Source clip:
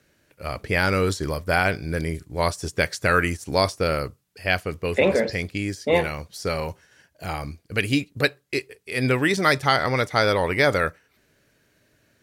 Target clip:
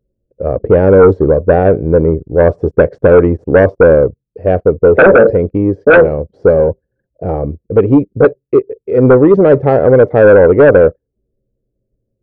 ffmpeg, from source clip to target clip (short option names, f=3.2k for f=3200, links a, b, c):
-af "anlmdn=0.0631,lowpass=f=490:t=q:w=3.6,aeval=exprs='1*sin(PI/2*3.16*val(0)/1)':c=same,volume=-1dB"